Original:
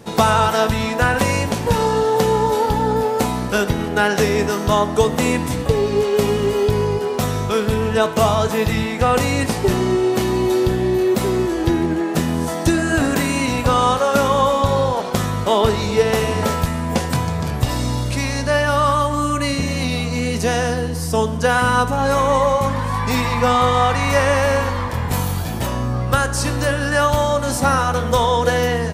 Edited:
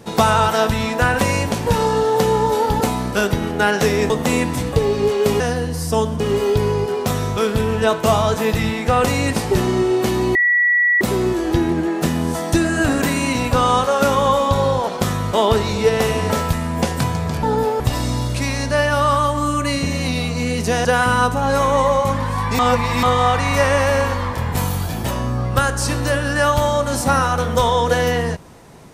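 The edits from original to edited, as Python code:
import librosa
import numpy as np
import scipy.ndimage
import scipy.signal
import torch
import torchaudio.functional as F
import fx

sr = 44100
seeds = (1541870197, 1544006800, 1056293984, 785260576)

y = fx.edit(x, sr, fx.move(start_s=2.81, length_s=0.37, to_s=17.56),
    fx.cut(start_s=4.47, length_s=0.56),
    fx.bleep(start_s=10.48, length_s=0.66, hz=1940.0, db=-12.0),
    fx.move(start_s=20.61, length_s=0.8, to_s=6.33),
    fx.reverse_span(start_s=23.15, length_s=0.44), tone=tone)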